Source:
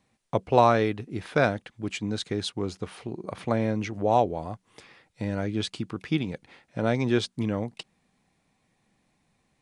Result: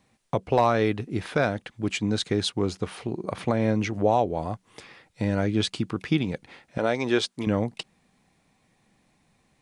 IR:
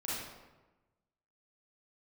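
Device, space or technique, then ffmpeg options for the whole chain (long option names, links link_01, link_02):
clipper into limiter: -filter_complex "[0:a]asettb=1/sr,asplit=3[link_01][link_02][link_03];[link_01]atrim=end=6.784[link_04];[link_02]atrim=start=6.78:end=7.47,asetpts=PTS-STARTPTS,afade=type=in:duration=0.004:curve=qsin,afade=type=out:start_time=0.686:duration=0.004:curve=qsin,bass=frequency=250:gain=-13,treble=frequency=4000:gain=0[link_05];[link_03]atrim=start=7.466[link_06];[link_04][link_05]acrossfade=duration=0.004:curve1=hsin:curve2=qsin[link_07];[link_07][link_06]acrossfade=duration=0.004:curve1=qsin:curve2=hsin,asoftclip=type=hard:threshold=-8.5dB,alimiter=limit=-15dB:level=0:latency=1:release=211,volume=4.5dB"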